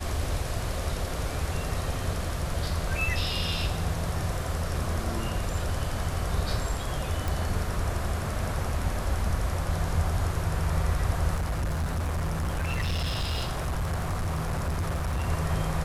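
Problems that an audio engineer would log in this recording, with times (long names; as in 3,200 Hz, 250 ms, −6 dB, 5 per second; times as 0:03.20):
0:07.28: click
0:11.35–0:15.29: clipping −25 dBFS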